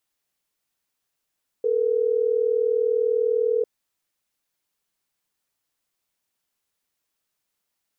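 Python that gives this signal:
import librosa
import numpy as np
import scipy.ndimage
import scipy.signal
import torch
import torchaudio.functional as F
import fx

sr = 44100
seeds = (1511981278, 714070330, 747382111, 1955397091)

y = fx.call_progress(sr, length_s=3.12, kind='ringback tone', level_db=-21.5)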